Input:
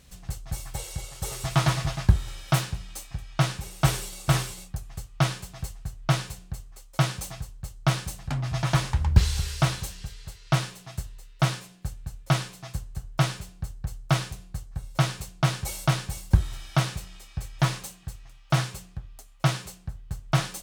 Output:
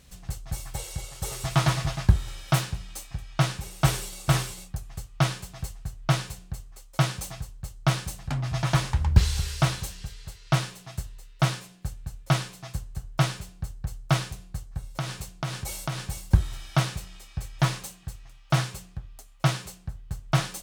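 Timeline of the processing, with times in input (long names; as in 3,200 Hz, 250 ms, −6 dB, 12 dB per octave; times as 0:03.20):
0:14.95–0:16.00: downward compressor 3 to 1, threshold −28 dBFS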